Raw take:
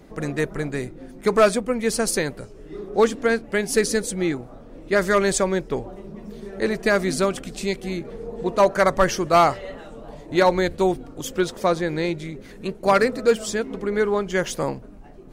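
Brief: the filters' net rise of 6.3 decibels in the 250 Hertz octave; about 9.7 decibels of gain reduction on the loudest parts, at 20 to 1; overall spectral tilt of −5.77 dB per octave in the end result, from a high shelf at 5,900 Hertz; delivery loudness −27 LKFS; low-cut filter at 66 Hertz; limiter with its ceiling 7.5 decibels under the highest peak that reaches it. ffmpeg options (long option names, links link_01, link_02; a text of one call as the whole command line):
ffmpeg -i in.wav -af "highpass=66,equalizer=frequency=250:width_type=o:gain=9,highshelf=frequency=5900:gain=-8,acompressor=threshold=-19dB:ratio=20,volume=1.5dB,alimiter=limit=-16dB:level=0:latency=1" out.wav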